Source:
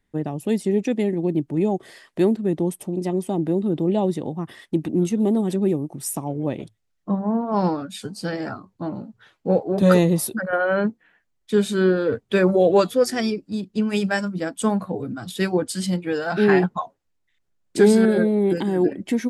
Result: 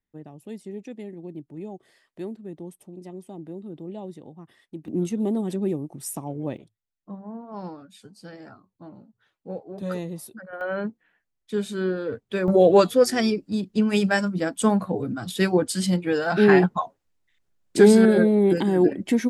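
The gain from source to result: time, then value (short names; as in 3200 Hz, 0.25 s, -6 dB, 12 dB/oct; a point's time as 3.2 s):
-15.5 dB
from 4.88 s -5 dB
from 6.57 s -15 dB
from 10.61 s -7.5 dB
from 12.48 s +1 dB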